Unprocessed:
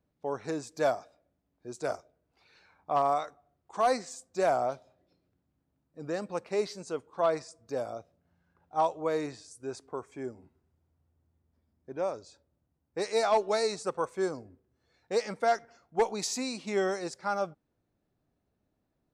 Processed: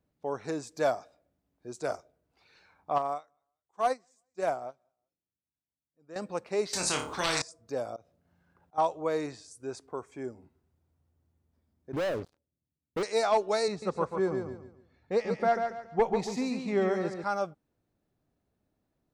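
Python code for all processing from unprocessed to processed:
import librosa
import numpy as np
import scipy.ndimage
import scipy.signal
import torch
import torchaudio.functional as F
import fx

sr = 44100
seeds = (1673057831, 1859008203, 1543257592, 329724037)

y = fx.chain(x, sr, fx.peak_eq(hz=4300.0, db=-4.0, octaves=0.25),
    fx.echo_feedback(ms=184, feedback_pct=36, wet_db=-23.5),
    fx.upward_expand(threshold_db=-38.0, expansion=2.5), at=(2.98, 6.16))
y = fx.chain(y, sr, fx.room_flutter(wall_m=4.7, rt60_s=0.26),
    fx.spectral_comp(ratio=4.0), at=(6.73, 7.42))
y = fx.chain(y, sr, fx.auto_swell(attack_ms=105.0),
    fx.band_squash(depth_pct=40), at=(7.96, 8.78))
y = fx.chain(y, sr, fx.bandpass_q(hz=170.0, q=0.6),
    fx.leveller(passes=5), at=(11.93, 13.03))
y = fx.chain(y, sr, fx.bass_treble(bass_db=8, treble_db=-14),
    fx.notch(hz=1500.0, q=22.0),
    fx.echo_feedback(ms=140, feedback_pct=32, wet_db=-6), at=(13.68, 17.24))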